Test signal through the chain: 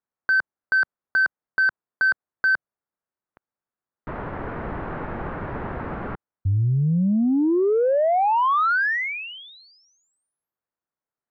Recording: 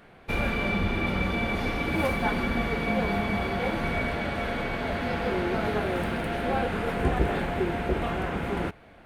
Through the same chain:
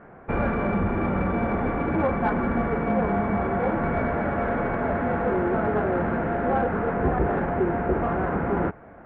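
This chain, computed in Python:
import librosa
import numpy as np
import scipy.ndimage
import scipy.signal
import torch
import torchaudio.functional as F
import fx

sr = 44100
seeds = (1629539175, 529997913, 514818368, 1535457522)

p1 = scipy.signal.sosfilt(scipy.signal.butter(4, 1600.0, 'lowpass', fs=sr, output='sos'), x)
p2 = fx.rider(p1, sr, range_db=3, speed_s=0.5)
p3 = p1 + F.gain(torch.from_numpy(p2), -1.0).numpy()
p4 = fx.low_shelf(p3, sr, hz=65.0, db=-8.0)
y = 10.0 ** (-12.5 / 20.0) * np.tanh(p4 / 10.0 ** (-12.5 / 20.0))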